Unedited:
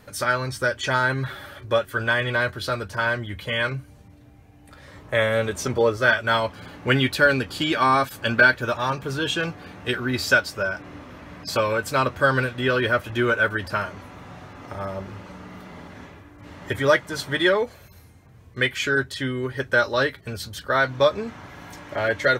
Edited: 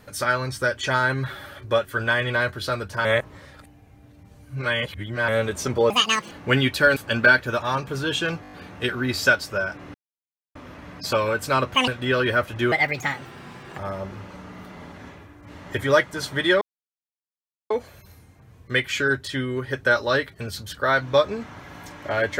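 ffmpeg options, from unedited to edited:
ffmpeg -i in.wav -filter_complex "[0:a]asplit=17[link_01][link_02][link_03][link_04][link_05][link_06][link_07][link_08][link_09][link_10][link_11][link_12][link_13][link_14][link_15][link_16][link_17];[link_01]atrim=end=3.052[link_18];[link_02]atrim=start=3.048:end=5.282,asetpts=PTS-STARTPTS,areverse[link_19];[link_03]atrim=start=5.278:end=5.904[link_20];[link_04]atrim=start=5.9:end=6.7,asetpts=PTS-STARTPTS,asetrate=85554,aresample=44100[link_21];[link_05]atrim=start=6.696:end=7.352[link_22];[link_06]atrim=start=8.108:end=9.592[link_23];[link_07]atrim=start=9.568:end=9.592[link_24];[link_08]atrim=start=9.568:end=9.592[link_25];[link_09]atrim=start=9.568:end=9.592[link_26];[link_10]atrim=start=9.568:end=9.592[link_27];[link_11]atrim=start=9.568:end=10.99,asetpts=PTS-STARTPTS,afade=type=out:start_time=1.418:duration=0.004:curve=hsin,apad=pad_dur=0.61[link_28];[link_12]atrim=start=10.99:end=12.184,asetpts=PTS-STARTPTS,afade=type=in:duration=0.004:curve=hsin[link_29];[link_13]atrim=start=12.18:end=12.44,asetpts=PTS-STARTPTS,asetrate=85113,aresample=44100[link_30];[link_14]atrim=start=12.436:end=13.284[link_31];[link_15]atrim=start=13.28:end=14.74,asetpts=PTS-STARTPTS,asetrate=60417,aresample=44100,atrim=end_sample=46997,asetpts=PTS-STARTPTS[link_32];[link_16]atrim=start=14.736:end=17.57,asetpts=PTS-STARTPTS,afade=type=out:start_time=2.83:duration=0.004:curve=hsin,apad=pad_dur=1.09[link_33];[link_17]atrim=start=17.57,asetpts=PTS-STARTPTS,afade=type=in:duration=0.004:curve=hsin[link_34];[link_18][link_19]acrossfade=duration=0.004:curve1=hsin:curve2=hsin[link_35];[link_35][link_20]acrossfade=duration=0.004:curve1=hsin:curve2=hsin[link_36];[link_36][link_21]acrossfade=duration=0.004:curve1=hsin:curve2=hsin[link_37];[link_37][link_22]acrossfade=duration=0.004:curve1=hsin:curve2=hsin[link_38];[link_38][link_23]acrossfade=duration=0.004:curve1=hsin:curve2=hsin[link_39];[link_39][link_24]acrossfade=duration=0.004:curve1=hsin:curve2=hsin[link_40];[link_40][link_25]acrossfade=duration=0.004:curve1=hsin:curve2=hsin[link_41];[link_41][link_26]acrossfade=duration=0.004:curve1=hsin:curve2=hsin[link_42];[link_42][link_27]acrossfade=duration=0.004:curve1=hsin:curve2=hsin[link_43];[link_28][link_29]concat=n=2:v=0:a=1[link_44];[link_43][link_44]acrossfade=duration=0.004:curve1=hsin:curve2=hsin[link_45];[link_45][link_30]acrossfade=duration=0.004:curve1=hsin:curve2=hsin[link_46];[link_46][link_31]acrossfade=duration=0.004:curve1=hsin:curve2=hsin[link_47];[link_47][link_32]acrossfade=duration=0.004:curve1=hsin:curve2=hsin[link_48];[link_33][link_34]concat=n=2:v=0:a=1[link_49];[link_48][link_49]acrossfade=duration=0.004:curve1=hsin:curve2=hsin" out.wav

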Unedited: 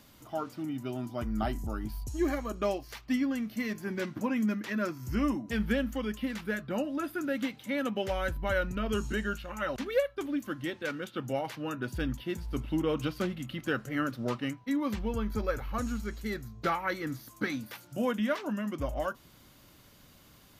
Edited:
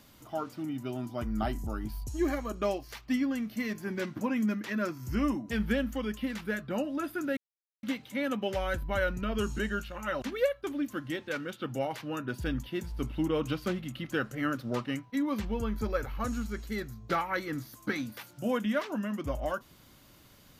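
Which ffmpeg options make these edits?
ffmpeg -i in.wav -filter_complex "[0:a]asplit=2[link_01][link_02];[link_01]atrim=end=7.37,asetpts=PTS-STARTPTS,afade=type=out:start_time=7.366:duration=0.004:curve=hsin,apad=pad_dur=0.46[link_03];[link_02]atrim=start=7.37,asetpts=PTS-STARTPTS,afade=type=in:duration=0.004:curve=hsin[link_04];[link_03][link_04]concat=n=2:v=0:a=1" out.wav

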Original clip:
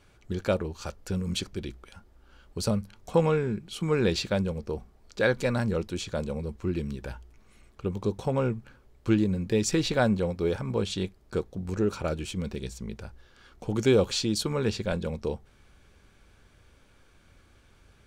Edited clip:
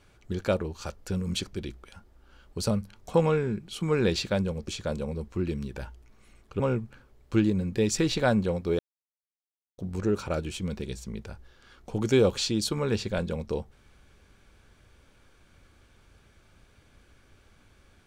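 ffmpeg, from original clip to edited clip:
ffmpeg -i in.wav -filter_complex "[0:a]asplit=5[link_01][link_02][link_03][link_04][link_05];[link_01]atrim=end=4.682[link_06];[link_02]atrim=start=5.958:end=7.882[link_07];[link_03]atrim=start=8.338:end=10.53,asetpts=PTS-STARTPTS,afade=type=out:start_time=2.188:duration=0.004:curve=hsin[link_08];[link_04]atrim=start=10.53:end=11.52,asetpts=PTS-STARTPTS,volume=0[link_09];[link_05]atrim=start=11.52,asetpts=PTS-STARTPTS,afade=type=in:duration=0.004:curve=hsin[link_10];[link_06][link_07]acrossfade=duration=0.004:curve1=hsin:curve2=hsin[link_11];[link_08][link_09][link_10]concat=n=3:v=0:a=1[link_12];[link_11][link_12]acrossfade=duration=0.004:curve1=hsin:curve2=hsin" out.wav

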